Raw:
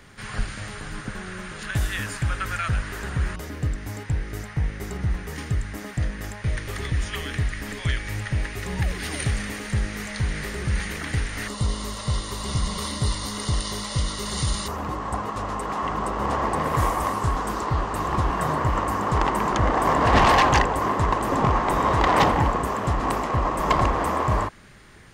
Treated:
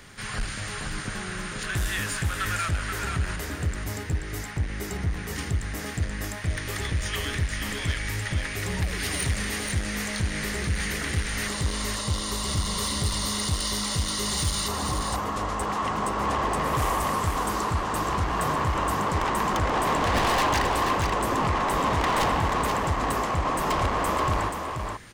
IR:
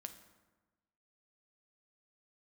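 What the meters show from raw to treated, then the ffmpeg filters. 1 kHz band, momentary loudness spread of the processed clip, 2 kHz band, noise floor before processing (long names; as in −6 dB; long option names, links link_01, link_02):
−2.5 dB, 7 LU, −0.5 dB, −37 dBFS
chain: -af "highshelf=frequency=2600:gain=6,asoftclip=type=tanh:threshold=-21.5dB,aecho=1:1:481:0.531"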